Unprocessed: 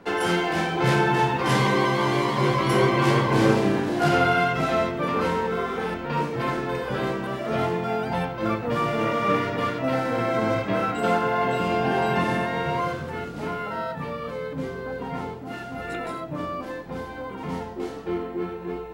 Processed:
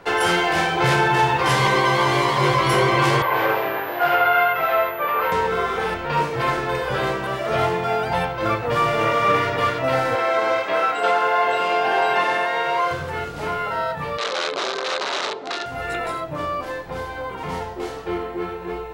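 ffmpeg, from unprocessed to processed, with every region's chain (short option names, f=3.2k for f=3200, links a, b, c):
-filter_complex "[0:a]asettb=1/sr,asplit=3[a][b][c];[a]atrim=end=3.224[d];[b]atrim=start=3.22:end=5.32,asetpts=PTS-STARTPTS,afade=t=in:d=0.004:c=qsin,afade=t=out:st=2.096:d=0.004:c=qsin,acrossover=split=450 3100:gain=0.141 1 0.0708[e][f][g];[e][f][g]amix=inputs=3:normalize=0,aeval=exprs='val(0)+0.00501*sin(2*PI*14000*n/s)':c=same[h];[c]atrim=start=5.316[i];[d][h]acrossfade=d=0.004:c1=hsin:c2=qsin[j];[j][i]acrossfade=d=0.004:c1=qsin:c2=hsin,asettb=1/sr,asplit=3[k][l][m];[k]atrim=end=10.154[n];[l]atrim=start=10.15:end=12.91,asetpts=PTS-STARTPTS,afade=t=in:d=0.004:c=qsin,afade=t=out:st=2.756:d=0.004:c=qsin,highpass=390,acrossover=split=6000[o][p];[p]acompressor=threshold=-58dB:ratio=4:attack=1:release=60[q];[o][q]amix=inputs=2:normalize=0[r];[m]atrim=start=12.906[s];[n][r]acrossfade=d=0.004:c1=hsin:c2=qsin[t];[t][s]acrossfade=d=0.004:c1=qsin:c2=hsin,asettb=1/sr,asplit=3[u][v][w];[u]atrim=end=14.184[x];[v]atrim=start=14.18:end=15.66,asetpts=PTS-STARTPTS,afade=t=in:d=0.004:c=qsin,afade=t=out:st=1.476:d=0.004:c=qsin,aeval=exprs='(mod(21.1*val(0)+1,2)-1)/21.1':c=same,highpass=f=220:w=0.5412,highpass=f=220:w=1.3066,equalizer=f=380:t=q:w=4:g=6,equalizer=f=590:t=q:w=4:g=5,equalizer=f=1.2k:t=q:w=4:g=4,equalizer=f=3.9k:t=q:w=4:g=8,lowpass=f=6.4k:w=0.5412,lowpass=f=6.4k:w=1.3066[y];[w]atrim=start=15.656[z];[x][y]acrossfade=d=0.004:c1=hsin:c2=qsin[aa];[aa][z]acrossfade=d=0.004:c1=qsin:c2=hsin,equalizer=f=230:w=1.3:g=-13.5,acontrast=23,alimiter=level_in=9.5dB:limit=-1dB:release=50:level=0:latency=1,volume=-7.5dB"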